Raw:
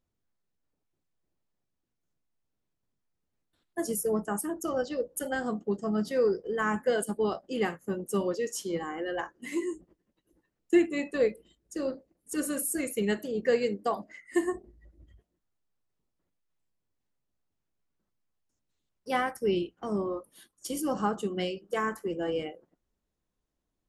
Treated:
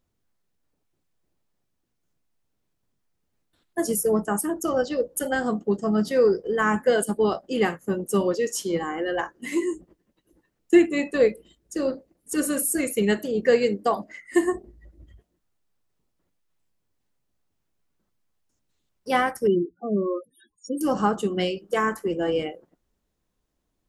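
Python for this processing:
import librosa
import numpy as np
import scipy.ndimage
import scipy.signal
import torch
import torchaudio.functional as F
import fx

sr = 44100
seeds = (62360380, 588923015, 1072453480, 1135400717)

y = fx.spec_topn(x, sr, count=8, at=(19.47, 20.81))
y = y * librosa.db_to_amplitude(6.5)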